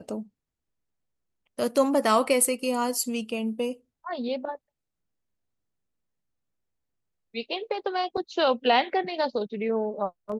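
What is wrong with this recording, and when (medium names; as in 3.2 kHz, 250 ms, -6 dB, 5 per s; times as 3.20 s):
8.17–8.18 s: dropout 5.3 ms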